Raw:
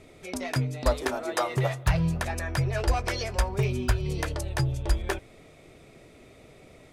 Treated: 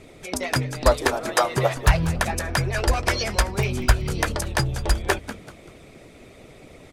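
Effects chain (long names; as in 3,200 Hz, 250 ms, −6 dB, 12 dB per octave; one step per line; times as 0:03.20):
harmonic and percussive parts rebalanced percussive +9 dB
echo with shifted repeats 192 ms, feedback 36%, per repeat −130 Hz, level −13.5 dB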